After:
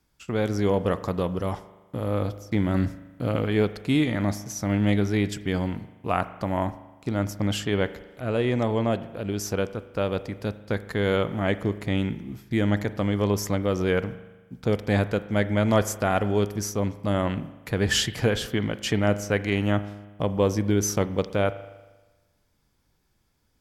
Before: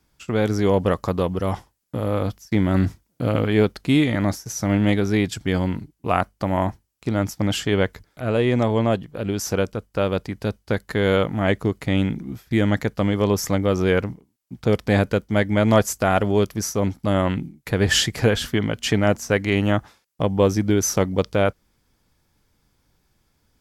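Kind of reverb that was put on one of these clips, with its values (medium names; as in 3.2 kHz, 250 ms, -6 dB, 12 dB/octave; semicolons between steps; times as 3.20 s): spring tank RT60 1.2 s, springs 39 ms, chirp 75 ms, DRR 13.5 dB; trim -4.5 dB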